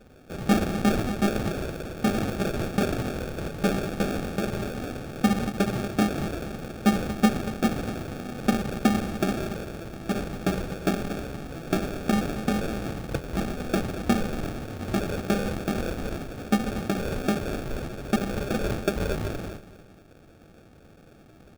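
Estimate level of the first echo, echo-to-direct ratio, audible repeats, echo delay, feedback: -14.5 dB, -14.0 dB, 2, 0.234 s, 28%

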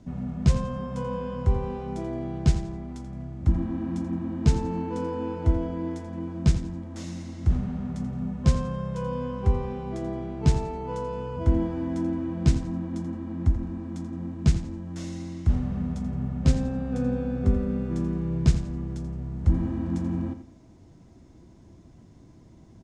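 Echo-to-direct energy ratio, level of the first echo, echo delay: -11.0 dB, -11.5 dB, 85 ms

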